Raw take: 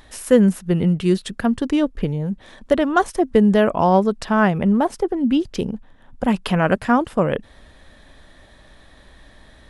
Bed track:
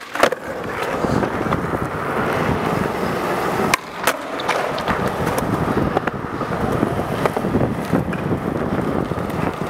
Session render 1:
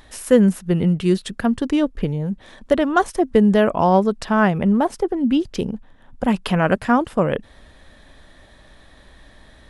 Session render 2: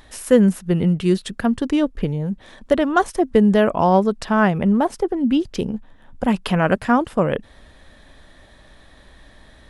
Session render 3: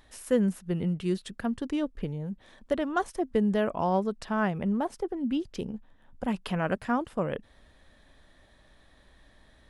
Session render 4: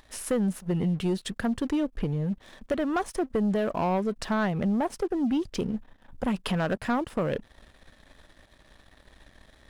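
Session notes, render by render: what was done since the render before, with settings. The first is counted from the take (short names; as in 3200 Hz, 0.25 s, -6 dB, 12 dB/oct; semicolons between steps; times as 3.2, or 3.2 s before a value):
nothing audible
5.69–6.24 doubler 14 ms -6 dB
gain -11 dB
compressor 3:1, threshold -29 dBFS, peak gain reduction 8 dB; sample leveller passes 2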